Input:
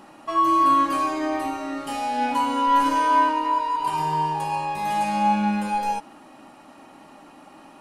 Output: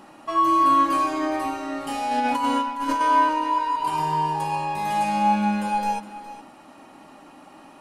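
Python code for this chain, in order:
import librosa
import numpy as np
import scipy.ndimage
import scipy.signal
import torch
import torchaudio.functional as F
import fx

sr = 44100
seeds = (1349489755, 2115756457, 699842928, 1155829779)

y = fx.over_compress(x, sr, threshold_db=-23.0, ratio=-0.5, at=(2.11, 3.01))
y = y + 10.0 ** (-14.5 / 20.0) * np.pad(y, (int(414 * sr / 1000.0), 0))[:len(y)]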